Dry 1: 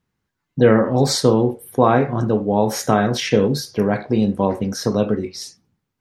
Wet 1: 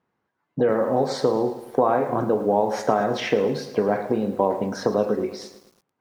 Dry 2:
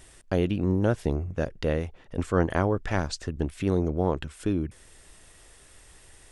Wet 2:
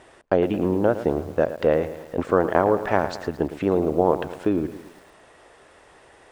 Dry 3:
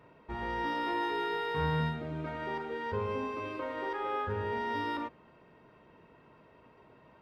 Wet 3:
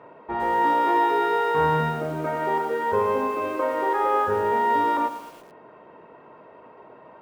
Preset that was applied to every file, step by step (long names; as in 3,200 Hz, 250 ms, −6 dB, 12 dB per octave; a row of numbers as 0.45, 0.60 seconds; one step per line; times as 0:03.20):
downward compressor 16 to 1, threshold −20 dBFS
resonant band-pass 710 Hz, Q 0.86
feedback echo at a low word length 110 ms, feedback 55%, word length 9 bits, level −12.5 dB
loudness normalisation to −23 LKFS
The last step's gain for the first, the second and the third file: +7.5, +11.5, +14.5 decibels